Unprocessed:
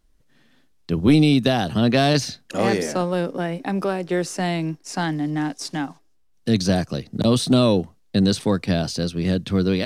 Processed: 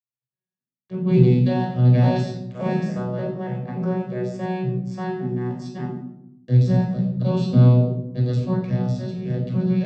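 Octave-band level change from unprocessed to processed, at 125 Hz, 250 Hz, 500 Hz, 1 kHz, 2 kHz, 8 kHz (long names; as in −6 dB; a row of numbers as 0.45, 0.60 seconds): +6.0 dB, −2.5 dB, −3.5 dB, −5.0 dB, −10.0 dB, below −15 dB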